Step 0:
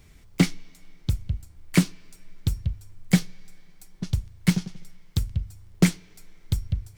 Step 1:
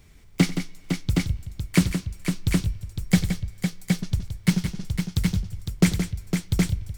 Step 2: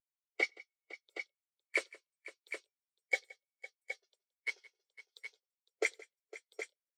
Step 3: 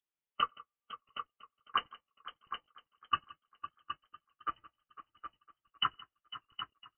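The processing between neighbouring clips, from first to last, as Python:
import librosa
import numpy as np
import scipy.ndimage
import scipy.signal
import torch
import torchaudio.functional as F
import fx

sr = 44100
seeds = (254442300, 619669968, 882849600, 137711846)

y1 = fx.echo_multitap(x, sr, ms=(92, 171, 507, 768), db=(-18.0, -9.0, -7.0, -4.0))
y2 = scipy.signal.sosfilt(scipy.signal.butter(6, 430.0, 'highpass', fs=sr, output='sos'), y1)
y2 = fx.spectral_expand(y2, sr, expansion=2.5)
y2 = y2 * librosa.db_to_amplitude(-3.0)
y3 = fx.freq_invert(y2, sr, carrier_hz=3400)
y3 = fx.echo_warbled(y3, sr, ms=504, feedback_pct=45, rate_hz=2.8, cents=100, wet_db=-19.0)
y3 = y3 * librosa.db_to_amplitude(1.5)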